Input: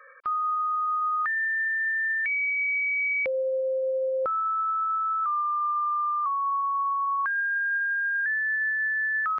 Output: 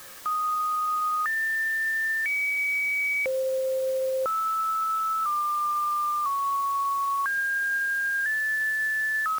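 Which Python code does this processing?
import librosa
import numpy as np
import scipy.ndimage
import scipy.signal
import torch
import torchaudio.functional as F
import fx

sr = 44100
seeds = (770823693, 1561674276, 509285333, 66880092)

y = fx.dmg_noise_colour(x, sr, seeds[0], colour='white', level_db=-45.0)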